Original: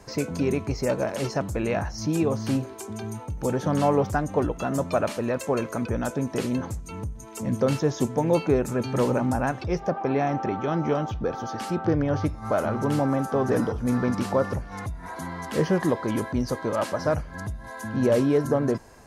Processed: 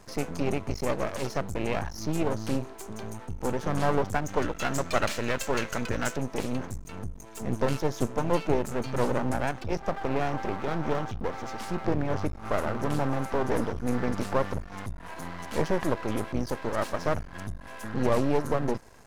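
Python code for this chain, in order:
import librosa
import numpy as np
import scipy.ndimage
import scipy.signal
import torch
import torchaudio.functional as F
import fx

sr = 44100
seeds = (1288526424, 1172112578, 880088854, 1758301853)

y = fx.spec_box(x, sr, start_s=4.26, length_s=1.91, low_hz=1300.0, high_hz=8100.0, gain_db=9)
y = np.maximum(y, 0.0)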